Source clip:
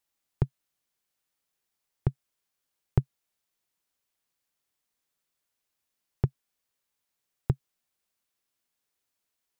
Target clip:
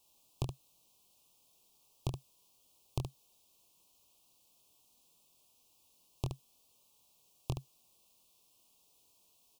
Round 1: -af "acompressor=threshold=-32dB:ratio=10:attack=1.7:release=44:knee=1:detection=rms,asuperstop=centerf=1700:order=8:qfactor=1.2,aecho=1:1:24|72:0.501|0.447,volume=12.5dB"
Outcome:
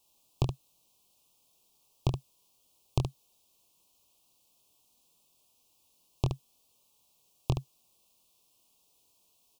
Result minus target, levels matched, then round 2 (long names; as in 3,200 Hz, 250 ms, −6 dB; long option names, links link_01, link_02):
downward compressor: peak gain reduction −8 dB
-af "acompressor=threshold=-41dB:ratio=10:attack=1.7:release=44:knee=1:detection=rms,asuperstop=centerf=1700:order=8:qfactor=1.2,aecho=1:1:24|72:0.501|0.447,volume=12.5dB"